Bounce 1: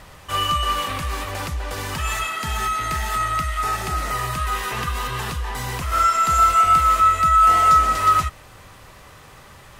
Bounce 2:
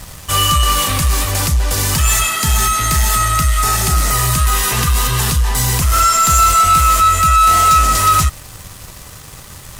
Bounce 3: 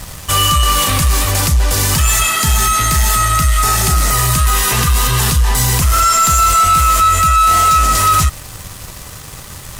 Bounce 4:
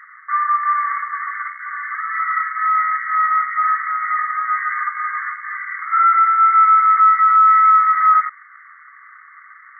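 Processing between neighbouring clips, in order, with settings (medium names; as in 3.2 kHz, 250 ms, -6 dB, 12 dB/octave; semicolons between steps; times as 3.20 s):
tone controls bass +8 dB, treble +14 dB; waveshaping leveller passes 2; trim -1.5 dB
peak limiter -9.5 dBFS, peak gain reduction 5 dB; trim +3.5 dB
rattle on loud lows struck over -14 dBFS, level -14 dBFS; brick-wall FIR band-pass 1.1–2.2 kHz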